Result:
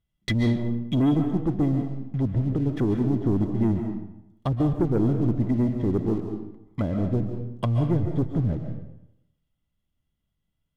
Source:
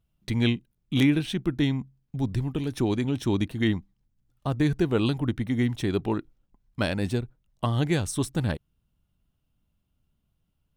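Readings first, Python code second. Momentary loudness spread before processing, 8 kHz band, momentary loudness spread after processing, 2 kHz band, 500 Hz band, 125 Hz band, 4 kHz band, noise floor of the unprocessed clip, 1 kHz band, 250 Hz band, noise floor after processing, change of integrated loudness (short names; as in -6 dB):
9 LU, under -10 dB, 10 LU, -7.5 dB, +1.0 dB, +3.5 dB, n/a, -75 dBFS, -0.5 dB, +2.5 dB, -79 dBFS, +2.0 dB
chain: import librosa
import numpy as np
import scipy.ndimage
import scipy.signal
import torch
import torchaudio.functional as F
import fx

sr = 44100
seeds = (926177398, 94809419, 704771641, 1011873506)

y = fx.env_lowpass_down(x, sr, base_hz=410.0, full_db=-24.0)
y = fx.small_body(y, sr, hz=(2000.0, 3300.0), ring_ms=45, db=16)
y = fx.leveller(y, sr, passes=2)
y = fx.rev_freeverb(y, sr, rt60_s=0.83, hf_ratio=0.75, predelay_ms=100, drr_db=5.0)
y = y * 10.0 ** (-2.5 / 20.0)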